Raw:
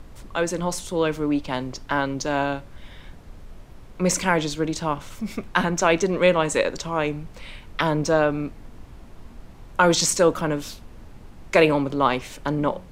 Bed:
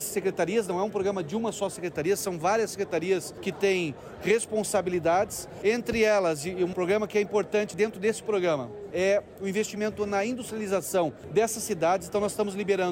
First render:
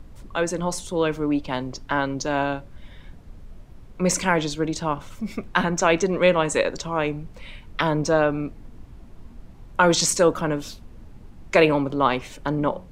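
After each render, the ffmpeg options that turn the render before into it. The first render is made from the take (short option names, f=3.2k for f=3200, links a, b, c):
-af "afftdn=nr=6:nf=-44"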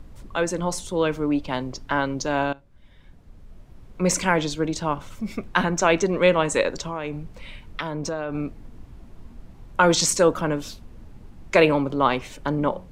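-filter_complex "[0:a]asettb=1/sr,asplit=3[a][b][c];[a]atrim=end=6.844[d];[b]atrim=start=6.84:end=8.35,asetpts=PTS-STARTPTS,afade=t=in:d=0.004:c=qsin,afade=t=out:st=1.506:d=0.004:c=qsin,acompressor=threshold=-25dB:ratio=4:attack=3.2:release=140:knee=1:detection=peak[e];[c]atrim=start=8.346[f];[d][e]acrossfade=d=0.004:c1=hsin:c2=qsin[g];[g][f]acrossfade=d=0.004:c1=qsin:c2=hsin,asplit=2[h][i];[h]atrim=end=2.53,asetpts=PTS-STARTPTS,afade=t=out:st=2.526:d=0.004:c=hsin:silence=0.11885[j];[i]atrim=start=2.53,asetpts=PTS-STARTPTS,afade=t=in:d=1.5:silence=0.11885[k];[j][k]concat=n=2:v=0:a=1"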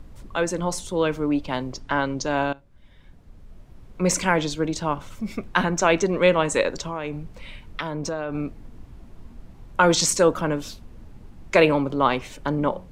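-filter_complex "[0:a]asettb=1/sr,asplit=3[a][b][c];[a]atrim=end=1.804[d];[b]atrim=start=1.8:end=2.36,asetpts=PTS-STARTPTS,afade=t=in:d=0.004:c=qsin,afade=t=out:st=0.556:d=0.004:c=qsin,lowpass=f=10k:w=0.5412,lowpass=f=10k:w=1.3066[e];[c]atrim=start=2.356[f];[d][e]acrossfade=d=0.004:c1=hsin:c2=qsin[g];[g][f]acrossfade=d=0.004:c1=qsin:c2=hsin"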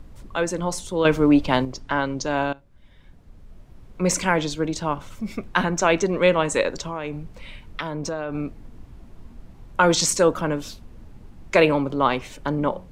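-filter_complex "[0:a]asplit=3[a][b][c];[a]atrim=end=1.052[d];[b]atrim=start=1.048:end=1.652,asetpts=PTS-STARTPTS,volume=7dB[e];[c]atrim=start=1.648[f];[d][e]acrossfade=d=0.004:c1=hsin:c2=hsin[g];[g][f]acrossfade=d=0.004:c1=hsin:c2=hsin"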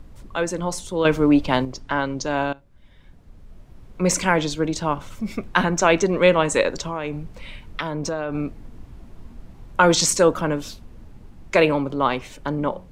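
-af "dynaudnorm=f=220:g=21:m=4.5dB"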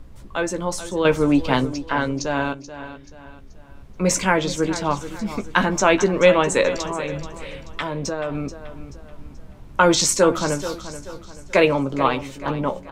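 -filter_complex "[0:a]asplit=2[a][b];[b]adelay=15,volume=-8dB[c];[a][c]amix=inputs=2:normalize=0,aecho=1:1:432|864|1296|1728:0.224|0.0873|0.0341|0.0133"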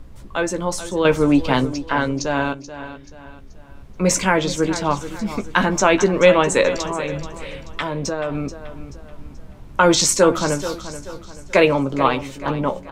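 -af "volume=2dB,alimiter=limit=-2dB:level=0:latency=1"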